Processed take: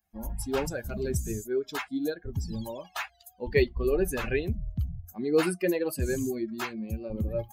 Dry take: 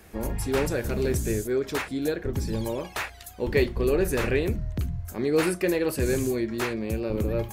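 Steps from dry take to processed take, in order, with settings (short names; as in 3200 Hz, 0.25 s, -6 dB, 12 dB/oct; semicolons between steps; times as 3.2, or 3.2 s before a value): per-bin expansion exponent 2; gain +1.5 dB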